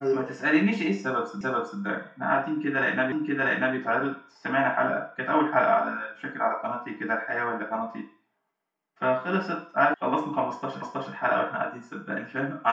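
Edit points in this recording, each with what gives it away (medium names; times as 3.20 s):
1.41 s: repeat of the last 0.39 s
3.12 s: repeat of the last 0.64 s
9.94 s: sound stops dead
10.82 s: repeat of the last 0.32 s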